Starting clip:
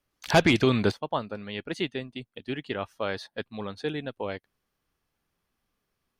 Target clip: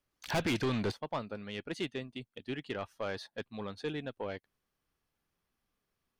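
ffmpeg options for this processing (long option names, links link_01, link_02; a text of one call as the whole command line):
ffmpeg -i in.wav -af "asoftclip=type=tanh:threshold=-22.5dB,volume=-4.5dB" out.wav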